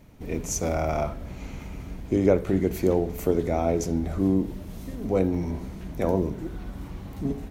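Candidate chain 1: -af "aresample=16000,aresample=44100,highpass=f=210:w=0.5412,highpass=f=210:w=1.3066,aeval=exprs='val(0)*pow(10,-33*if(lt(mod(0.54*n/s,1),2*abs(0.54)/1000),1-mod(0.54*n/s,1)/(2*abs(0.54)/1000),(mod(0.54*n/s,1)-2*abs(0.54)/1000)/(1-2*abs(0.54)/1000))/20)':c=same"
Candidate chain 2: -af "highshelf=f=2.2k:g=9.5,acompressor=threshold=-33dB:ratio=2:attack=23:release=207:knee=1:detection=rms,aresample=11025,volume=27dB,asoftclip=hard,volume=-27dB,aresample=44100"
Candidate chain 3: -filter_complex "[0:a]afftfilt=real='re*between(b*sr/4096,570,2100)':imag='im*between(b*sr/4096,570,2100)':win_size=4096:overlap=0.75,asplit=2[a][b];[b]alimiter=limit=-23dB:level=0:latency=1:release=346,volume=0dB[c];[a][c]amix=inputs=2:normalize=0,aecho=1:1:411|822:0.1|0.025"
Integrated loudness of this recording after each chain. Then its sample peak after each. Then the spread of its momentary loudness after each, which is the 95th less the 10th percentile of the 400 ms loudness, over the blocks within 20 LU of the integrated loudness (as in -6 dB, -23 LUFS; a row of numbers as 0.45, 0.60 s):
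-36.0, -35.5, -30.0 LUFS; -15.0, -25.0, -11.0 dBFS; 22, 6, 21 LU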